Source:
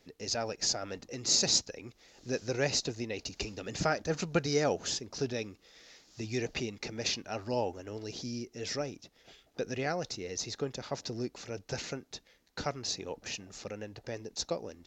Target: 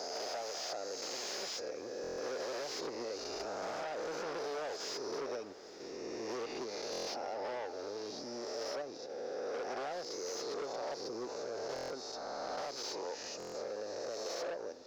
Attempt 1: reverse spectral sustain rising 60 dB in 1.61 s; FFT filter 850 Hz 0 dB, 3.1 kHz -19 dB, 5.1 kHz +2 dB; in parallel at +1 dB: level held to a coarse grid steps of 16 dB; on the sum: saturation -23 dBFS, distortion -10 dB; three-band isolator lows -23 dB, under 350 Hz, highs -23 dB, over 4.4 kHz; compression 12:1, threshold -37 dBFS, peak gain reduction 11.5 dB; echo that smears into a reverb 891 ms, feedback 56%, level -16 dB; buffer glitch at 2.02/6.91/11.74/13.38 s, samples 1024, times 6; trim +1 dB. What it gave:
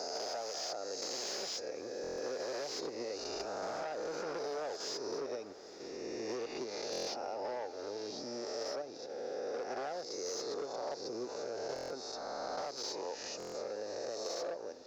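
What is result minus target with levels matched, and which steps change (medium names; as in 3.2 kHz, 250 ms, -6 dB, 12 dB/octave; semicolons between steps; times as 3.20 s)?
saturation: distortion -5 dB
change: saturation -30 dBFS, distortion -5 dB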